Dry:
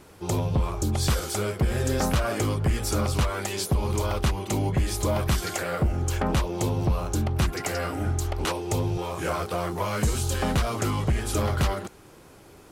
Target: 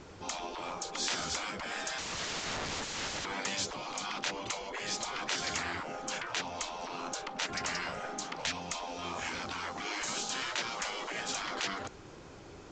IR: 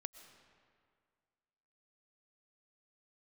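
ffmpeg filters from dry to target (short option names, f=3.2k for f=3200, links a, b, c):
-filter_complex "[0:a]asettb=1/sr,asplit=3[a][b][c];[a]atrim=end=1.984[d];[b]atrim=start=1.98:end=3.25,asetpts=PTS-STARTPTS,afade=t=in:d=0.004:c=qsin,afade=t=out:st=1.266:d=0.004:c=qsin,aeval=exprs='(mod(33.5*val(0)+1,2)-1)/33.5':c=same[e];[c]atrim=start=3.246[f];[d][e]acrossfade=d=0.004:c1=hsin:c2=qsin[g];[g][f]acrossfade=d=0.004:c1=qsin:c2=hsin,afftfilt=real='re*lt(hypot(re,im),0.0794)':imag='im*lt(hypot(re,im),0.0794)':win_size=1024:overlap=0.75" -ar 16000 -c:a pcm_alaw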